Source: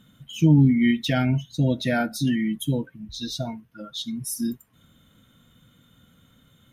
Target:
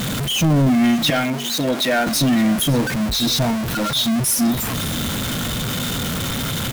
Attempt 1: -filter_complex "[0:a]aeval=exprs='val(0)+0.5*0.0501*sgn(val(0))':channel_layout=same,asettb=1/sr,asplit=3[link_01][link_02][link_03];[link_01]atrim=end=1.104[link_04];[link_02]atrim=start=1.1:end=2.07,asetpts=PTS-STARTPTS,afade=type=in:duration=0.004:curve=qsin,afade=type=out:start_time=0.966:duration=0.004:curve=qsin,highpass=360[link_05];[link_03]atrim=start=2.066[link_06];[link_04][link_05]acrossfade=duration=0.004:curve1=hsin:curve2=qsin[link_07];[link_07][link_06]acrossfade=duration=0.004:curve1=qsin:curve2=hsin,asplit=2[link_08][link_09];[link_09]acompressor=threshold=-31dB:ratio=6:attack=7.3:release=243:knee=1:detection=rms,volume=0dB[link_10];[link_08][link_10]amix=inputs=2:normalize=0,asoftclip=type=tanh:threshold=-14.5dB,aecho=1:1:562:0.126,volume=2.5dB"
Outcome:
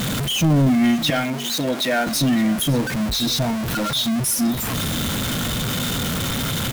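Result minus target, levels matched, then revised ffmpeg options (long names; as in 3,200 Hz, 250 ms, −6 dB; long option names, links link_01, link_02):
downward compressor: peak gain reduction +9.5 dB
-filter_complex "[0:a]aeval=exprs='val(0)+0.5*0.0501*sgn(val(0))':channel_layout=same,asettb=1/sr,asplit=3[link_01][link_02][link_03];[link_01]atrim=end=1.104[link_04];[link_02]atrim=start=1.1:end=2.07,asetpts=PTS-STARTPTS,afade=type=in:duration=0.004:curve=qsin,afade=type=out:start_time=0.966:duration=0.004:curve=qsin,highpass=360[link_05];[link_03]atrim=start=2.066[link_06];[link_04][link_05]acrossfade=duration=0.004:curve1=hsin:curve2=qsin[link_07];[link_07][link_06]acrossfade=duration=0.004:curve1=qsin:curve2=hsin,asplit=2[link_08][link_09];[link_09]acompressor=threshold=-19.5dB:ratio=6:attack=7.3:release=243:knee=1:detection=rms,volume=0dB[link_10];[link_08][link_10]amix=inputs=2:normalize=0,asoftclip=type=tanh:threshold=-14.5dB,aecho=1:1:562:0.126,volume=2.5dB"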